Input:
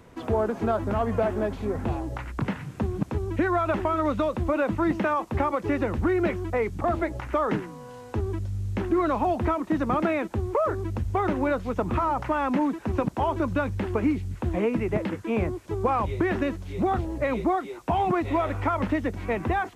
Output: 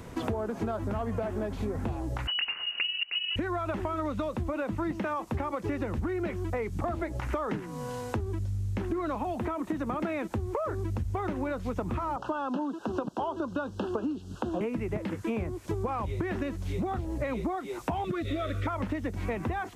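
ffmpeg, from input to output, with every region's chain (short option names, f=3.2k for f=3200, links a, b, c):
-filter_complex "[0:a]asettb=1/sr,asplit=3[a][b][c];[a]atrim=end=2.274[d];[b]atrim=start=2.27:end=3.36,asetpts=PTS-STARTPTS,afade=t=in:d=0.004:c=qsin,afade=t=out:st=1.086:d=0.004:c=qsin,lowshelf=f=150:g=5.5,lowpass=f=2.6k:t=q:w=0.5098,lowpass=f=2.6k:t=q:w=0.6013,lowpass=f=2.6k:t=q:w=0.9,lowpass=f=2.6k:t=q:w=2.563,afreqshift=-3000[e];[c]atrim=start=3.356[f];[d][e]acrossfade=d=0.004:c1=hsin:c2=qsin[g];[g][f]acrossfade=d=0.004:c1=qsin:c2=hsin,asettb=1/sr,asplit=3[h][i][j];[h]atrim=end=9.154[k];[i]atrim=start=9.15:end=10.02,asetpts=PTS-STARTPTS,afade=t=in:d=0.004:c=qsin,afade=t=out:st=0.866:d=0.004:c=qsin,acrossover=split=200|2100[l][m][n];[l]acompressor=threshold=-37dB:ratio=4[o];[m]acompressor=threshold=-25dB:ratio=4[p];[n]acompressor=threshold=-46dB:ratio=4[q];[o][p][q]amix=inputs=3:normalize=0,equalizer=f=5k:w=2:g=-3.5[r];[j]atrim=start=10.016[s];[k][r]acrossfade=d=0.004:c1=hsin:c2=qsin[t];[t][s]acrossfade=d=0.004:c1=qsin:c2=hsin,asettb=1/sr,asplit=3[u][v][w];[u]atrim=end=12.164[x];[v]atrim=start=12.16:end=14.61,asetpts=PTS-STARTPTS,afade=t=in:d=0.004:c=qsin,afade=t=out:st=2.446:d=0.004:c=qsin,asuperstop=centerf=2100:order=8:qfactor=1.9,acrossover=split=200 6300:gain=0.112 1 0.224[y][z][aa];[y][z][aa]amix=inputs=3:normalize=0[ab];[w]atrim=start=14.606[ac];[x][ab]acrossfade=d=0.004:c1=hsin:c2=qsin[ad];[ad][ac]acrossfade=d=0.004:c1=qsin:c2=hsin,asettb=1/sr,asplit=3[ae][af][ag];[ae]atrim=end=18.044[ah];[af]atrim=start=18.04:end=18.67,asetpts=PTS-STARTPTS,afade=t=in:d=0.004:c=qsin,afade=t=out:st=0.626:d=0.004:c=qsin,asuperstop=centerf=870:order=20:qfactor=2,equalizer=f=3.6k:t=o:w=0.2:g=12[ai];[ag]atrim=start=18.666[aj];[ah][ai]acrossfade=d=0.004:c1=hsin:c2=qsin[ak];[ak][aj]acrossfade=d=0.004:c1=qsin:c2=hsin,bass=f=250:g=3,treble=f=4k:g=4,acompressor=threshold=-34dB:ratio=10,volume=5.5dB"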